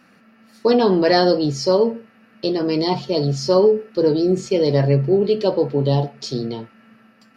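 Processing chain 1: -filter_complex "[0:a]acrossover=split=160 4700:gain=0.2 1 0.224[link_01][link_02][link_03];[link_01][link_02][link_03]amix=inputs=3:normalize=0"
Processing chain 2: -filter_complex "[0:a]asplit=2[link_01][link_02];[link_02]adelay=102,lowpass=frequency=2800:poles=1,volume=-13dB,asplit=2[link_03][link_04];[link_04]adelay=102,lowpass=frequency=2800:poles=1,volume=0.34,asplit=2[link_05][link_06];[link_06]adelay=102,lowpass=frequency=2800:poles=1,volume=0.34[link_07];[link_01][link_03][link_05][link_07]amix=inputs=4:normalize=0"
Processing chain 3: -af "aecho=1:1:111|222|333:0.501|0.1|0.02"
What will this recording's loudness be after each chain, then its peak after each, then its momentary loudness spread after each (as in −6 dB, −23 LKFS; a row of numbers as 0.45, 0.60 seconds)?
−19.0, −18.0, −17.5 LKFS; −4.0, −3.0, −1.0 dBFS; 12, 11, 11 LU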